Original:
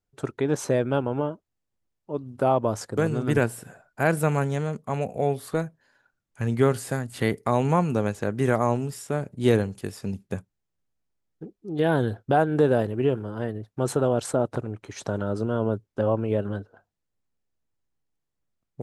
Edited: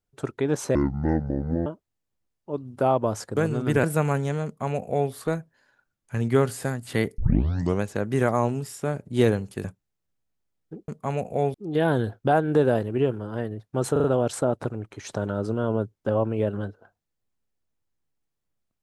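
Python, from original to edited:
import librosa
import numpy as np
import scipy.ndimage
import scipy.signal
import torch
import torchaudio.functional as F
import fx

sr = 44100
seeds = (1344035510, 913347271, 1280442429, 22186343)

y = fx.edit(x, sr, fx.speed_span(start_s=0.75, length_s=0.52, speed=0.57),
    fx.cut(start_s=3.44, length_s=0.66),
    fx.duplicate(start_s=4.72, length_s=0.66, to_s=11.58),
    fx.tape_start(start_s=7.45, length_s=0.63),
    fx.cut(start_s=9.91, length_s=0.43),
    fx.stutter(start_s=13.96, slice_s=0.04, count=4), tone=tone)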